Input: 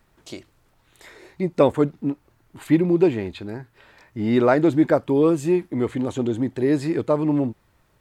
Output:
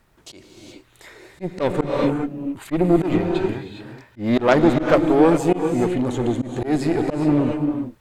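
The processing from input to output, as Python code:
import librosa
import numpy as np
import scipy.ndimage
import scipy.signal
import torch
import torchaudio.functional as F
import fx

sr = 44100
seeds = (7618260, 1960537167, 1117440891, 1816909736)

y = fx.cheby_harmonics(x, sr, harmonics=(6,), levels_db=(-17,), full_scale_db=-3.5)
y = fx.rev_gated(y, sr, seeds[0], gate_ms=440, shape='rising', drr_db=5.0)
y = fx.auto_swell(y, sr, attack_ms=121.0)
y = y * librosa.db_to_amplitude(2.0)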